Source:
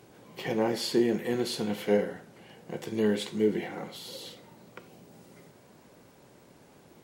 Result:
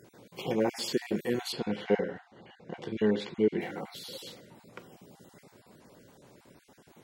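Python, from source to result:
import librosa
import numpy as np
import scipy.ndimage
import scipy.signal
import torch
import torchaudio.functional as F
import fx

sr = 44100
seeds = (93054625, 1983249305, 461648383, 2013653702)

y = fx.spec_dropout(x, sr, seeds[0], share_pct=23)
y = fx.lowpass(y, sr, hz=3800.0, slope=12, at=(1.52, 3.61))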